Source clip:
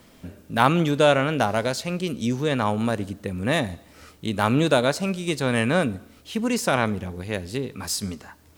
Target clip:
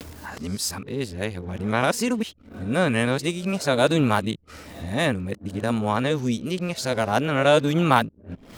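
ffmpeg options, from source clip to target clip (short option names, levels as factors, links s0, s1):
-af "areverse,acompressor=mode=upward:threshold=0.0447:ratio=2.5,anlmdn=0.0398"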